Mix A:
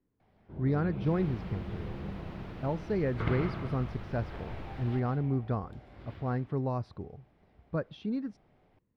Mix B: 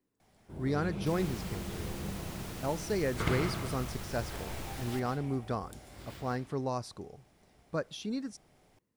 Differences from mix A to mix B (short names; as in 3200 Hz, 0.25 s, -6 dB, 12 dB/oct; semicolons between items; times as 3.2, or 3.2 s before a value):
speech: add low shelf 140 Hz -12 dB; master: remove air absorption 360 m